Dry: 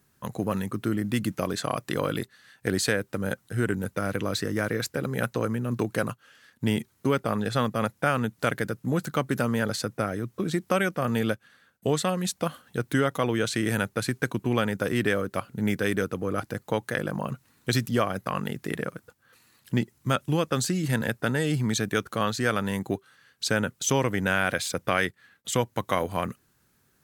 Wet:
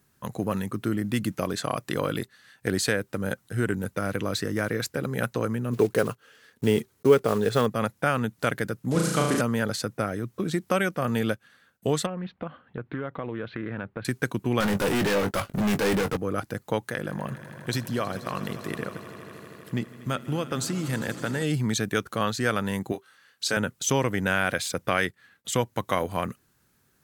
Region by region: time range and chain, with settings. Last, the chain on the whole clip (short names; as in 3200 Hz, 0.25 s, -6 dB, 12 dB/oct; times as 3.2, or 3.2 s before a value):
5.73–7.68 block floating point 5-bit + bell 430 Hz +11 dB 0.42 oct
8.91–9.41 switching spikes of -22.5 dBFS + LPF 9700 Hz 24 dB/oct + flutter echo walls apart 6.2 m, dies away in 0.89 s
12.06–14.05 Bessel low-pass 1900 Hz, order 8 + compressor 3:1, threshold -30 dBFS + Doppler distortion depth 0.2 ms
14.6–16.17 sample leveller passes 3 + hard clip -23 dBFS + doubler 20 ms -9.5 dB
16.87–21.43 compressor 1.5:1, threshold -29 dBFS + swelling echo 80 ms, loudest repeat 5, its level -18 dB
22.92–23.57 HPF 420 Hz 6 dB/oct + doubler 23 ms -6.5 dB
whole clip: dry